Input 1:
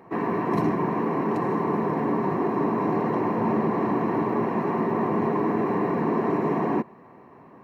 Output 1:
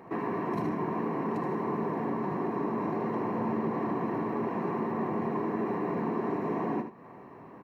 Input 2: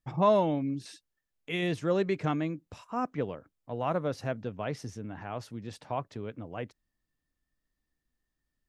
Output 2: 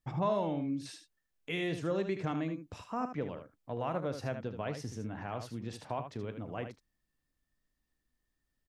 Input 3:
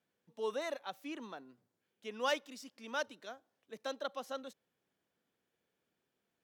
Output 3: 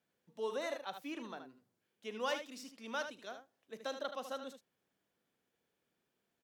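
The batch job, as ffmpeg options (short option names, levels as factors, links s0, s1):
-af "acompressor=threshold=0.0178:ratio=2,aecho=1:1:36|76:0.15|0.376"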